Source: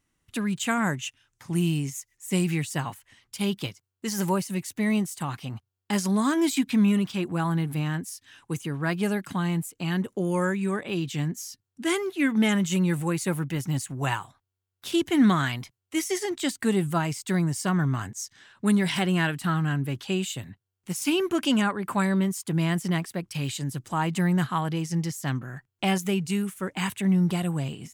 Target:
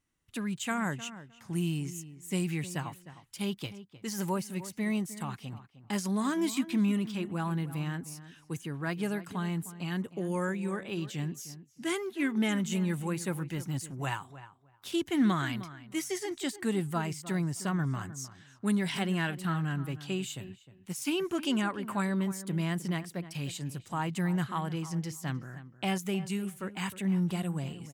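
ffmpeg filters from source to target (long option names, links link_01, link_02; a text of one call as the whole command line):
ffmpeg -i in.wav -filter_complex "[0:a]asplit=2[link_01][link_02];[link_02]adelay=308,lowpass=frequency=2000:poles=1,volume=-14dB,asplit=2[link_03][link_04];[link_04]adelay=308,lowpass=frequency=2000:poles=1,volume=0.17[link_05];[link_01][link_03][link_05]amix=inputs=3:normalize=0,volume=-6.5dB" out.wav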